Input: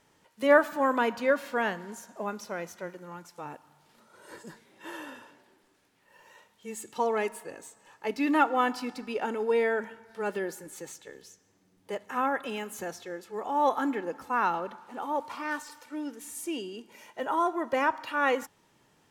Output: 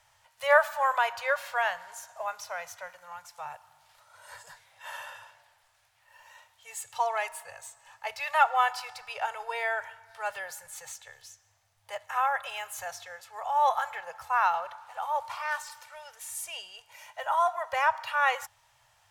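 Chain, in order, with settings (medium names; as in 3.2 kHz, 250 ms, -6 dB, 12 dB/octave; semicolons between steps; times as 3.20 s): Chebyshev band-stop 110–660 Hz, order 3; trim +3 dB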